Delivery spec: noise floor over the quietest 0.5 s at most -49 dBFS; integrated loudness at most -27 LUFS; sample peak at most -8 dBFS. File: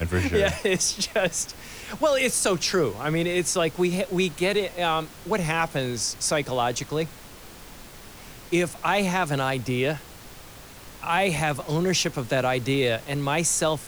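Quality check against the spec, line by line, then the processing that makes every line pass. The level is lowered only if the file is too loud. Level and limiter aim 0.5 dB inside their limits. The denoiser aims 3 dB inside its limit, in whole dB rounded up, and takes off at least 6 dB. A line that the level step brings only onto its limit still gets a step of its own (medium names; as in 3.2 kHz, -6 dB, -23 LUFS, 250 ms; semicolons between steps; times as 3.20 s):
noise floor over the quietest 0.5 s -44 dBFS: fail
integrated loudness -24.5 LUFS: fail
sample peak -9.0 dBFS: pass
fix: noise reduction 6 dB, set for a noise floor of -44 dBFS; trim -3 dB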